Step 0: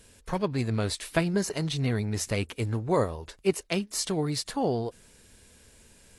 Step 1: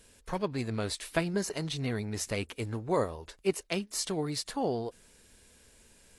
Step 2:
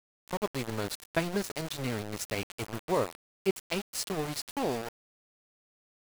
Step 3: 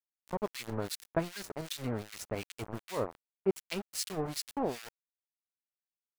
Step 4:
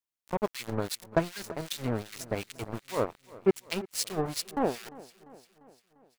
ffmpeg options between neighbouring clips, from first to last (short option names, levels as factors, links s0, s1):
-af "equalizer=f=110:t=o:w=1.6:g=-4.5,volume=0.708"
-af "aeval=exprs='val(0)*gte(abs(val(0)),0.0251)':c=same"
-filter_complex "[0:a]acrossover=split=1500[s0][s1];[s0]aeval=exprs='val(0)*(1-1/2+1/2*cos(2*PI*2.6*n/s))':c=same[s2];[s1]aeval=exprs='val(0)*(1-1/2-1/2*cos(2*PI*2.6*n/s))':c=same[s3];[s2][s3]amix=inputs=2:normalize=0"
-af "aeval=exprs='0.133*(cos(1*acos(clip(val(0)/0.133,-1,1)))-cos(1*PI/2))+0.00668*(cos(7*acos(clip(val(0)/0.133,-1,1)))-cos(7*PI/2))':c=same,aecho=1:1:347|694|1041|1388|1735:0.1|0.057|0.0325|0.0185|0.0106,volume=1.88"